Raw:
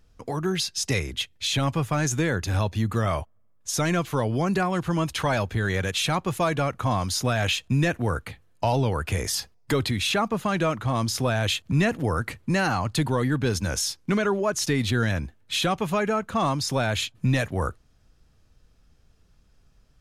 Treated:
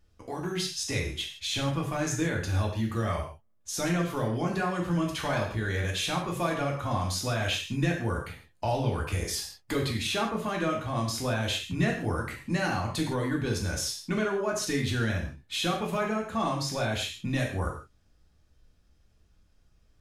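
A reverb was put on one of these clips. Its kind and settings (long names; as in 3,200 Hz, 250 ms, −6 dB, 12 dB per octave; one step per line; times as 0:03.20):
reverb whose tail is shaped and stops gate 190 ms falling, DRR −1 dB
level −8 dB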